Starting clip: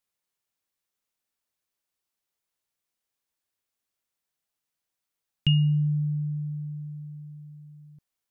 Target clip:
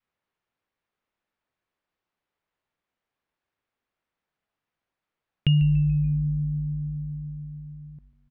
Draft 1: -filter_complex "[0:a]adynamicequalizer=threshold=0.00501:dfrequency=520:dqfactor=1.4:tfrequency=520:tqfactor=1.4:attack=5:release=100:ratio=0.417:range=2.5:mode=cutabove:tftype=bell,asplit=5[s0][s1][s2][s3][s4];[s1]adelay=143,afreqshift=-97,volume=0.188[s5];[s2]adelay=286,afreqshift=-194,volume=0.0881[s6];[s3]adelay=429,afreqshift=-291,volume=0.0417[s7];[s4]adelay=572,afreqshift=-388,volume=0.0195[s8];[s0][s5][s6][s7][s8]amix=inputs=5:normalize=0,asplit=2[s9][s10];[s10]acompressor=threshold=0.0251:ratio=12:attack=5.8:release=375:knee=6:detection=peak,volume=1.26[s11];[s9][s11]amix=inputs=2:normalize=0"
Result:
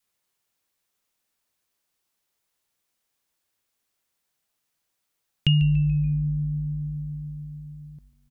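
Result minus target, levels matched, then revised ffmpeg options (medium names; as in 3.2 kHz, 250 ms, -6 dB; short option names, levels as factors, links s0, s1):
2 kHz band +5.0 dB
-filter_complex "[0:a]adynamicequalizer=threshold=0.00501:dfrequency=520:dqfactor=1.4:tfrequency=520:tqfactor=1.4:attack=5:release=100:ratio=0.417:range=2.5:mode=cutabove:tftype=bell,lowpass=2200,asplit=5[s0][s1][s2][s3][s4];[s1]adelay=143,afreqshift=-97,volume=0.188[s5];[s2]adelay=286,afreqshift=-194,volume=0.0881[s6];[s3]adelay=429,afreqshift=-291,volume=0.0417[s7];[s4]adelay=572,afreqshift=-388,volume=0.0195[s8];[s0][s5][s6][s7][s8]amix=inputs=5:normalize=0,asplit=2[s9][s10];[s10]acompressor=threshold=0.0251:ratio=12:attack=5.8:release=375:knee=6:detection=peak,volume=1.26[s11];[s9][s11]amix=inputs=2:normalize=0"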